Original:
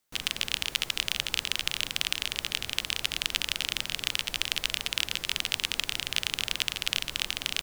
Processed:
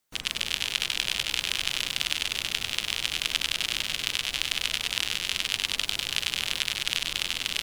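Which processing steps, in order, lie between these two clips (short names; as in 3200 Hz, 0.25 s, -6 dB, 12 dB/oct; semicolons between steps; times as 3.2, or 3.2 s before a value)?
spectral gate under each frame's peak -25 dB strong; lo-fi delay 98 ms, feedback 80%, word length 7-bit, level -5 dB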